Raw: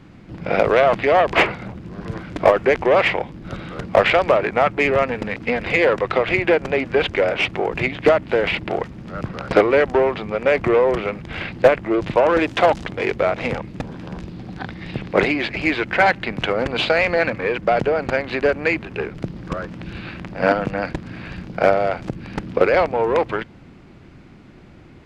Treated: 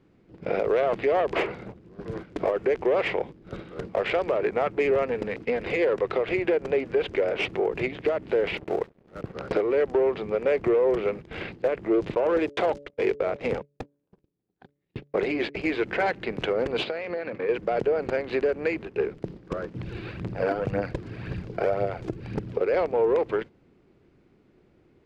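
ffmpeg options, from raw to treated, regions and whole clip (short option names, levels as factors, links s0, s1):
-filter_complex "[0:a]asettb=1/sr,asplit=3[s0][s1][s2];[s0]atrim=end=8.574[s3];[s1]atrim=start=8.57:end=9.33,asetpts=PTS-STARTPTS,afade=t=in:d=0.004:c=qsin,afade=t=out:st=0.756:d=0.004:c=qsin,lowpass=2700,aeval=exprs='sgn(val(0))*max(abs(val(0))-0.0158,0)':c=same[s4];[s2]atrim=start=9.326[s5];[s3][s4]acrossfade=d=0.004:c1=hsin:c2=qsin[s6];[s6][s5]acrossfade=d=0.004:c1=qsin:c2=hsin,asettb=1/sr,asplit=3[s7][s8][s9];[s7]atrim=end=12.154[s10];[s8]atrim=start=12.15:end=15.79,asetpts=PTS-STARTPTS,afade=t=in:d=0.004:c=qsin,afade=t=out:st=3.636:d=0.004:c=qsin,agate=range=0.02:threshold=0.0398:ratio=16:release=100:detection=peak,bandreject=f=143.1:t=h:w=4,bandreject=f=286.2:t=h:w=4,bandreject=f=429.3:t=h:w=4,bandreject=f=572.4:t=h:w=4[s11];[s9]atrim=start=15.786[s12];[s10][s11]acrossfade=d=0.004:c1=hsin:c2=qsin[s13];[s13][s12]acrossfade=d=0.004:c1=qsin:c2=hsin,asettb=1/sr,asplit=3[s14][s15][s16];[s14]atrim=end=16.834[s17];[s15]atrim=start=16.83:end=17.49,asetpts=PTS-STARTPTS,afade=t=in:d=0.004:c=qsin,afade=t=out:st=0.656:d=0.004:c=qsin,acompressor=threshold=0.0794:ratio=12:attack=3.2:release=140:knee=1:detection=peak,highpass=120,lowpass=4700[s18];[s16]atrim=start=17.486[s19];[s17][s18]acrossfade=d=0.004:c1=hsin:c2=qsin[s20];[s20][s19]acrossfade=d=0.004:c1=qsin:c2=hsin,asettb=1/sr,asplit=3[s21][s22][s23];[s21]atrim=end=19.744[s24];[s22]atrim=start=19.74:end=22.6,asetpts=PTS-STARTPTS,afade=t=in:d=0.004:c=qsin,afade=t=out:st=2.856:d=0.004:c=qsin,aphaser=in_gain=1:out_gain=1:delay=3.1:decay=0.47:speed=1.9:type=triangular,equalizer=f=110:w=1.8:g=9[s25];[s23]atrim=start=22.596[s26];[s24][s25]acrossfade=d=0.004:c1=hsin:c2=qsin[s27];[s27][s26]acrossfade=d=0.004:c1=qsin:c2=hsin,agate=range=0.316:threshold=0.0282:ratio=16:detection=peak,equalizer=f=420:t=o:w=0.82:g=10.5,alimiter=limit=0.473:level=0:latency=1:release=205,volume=0.376"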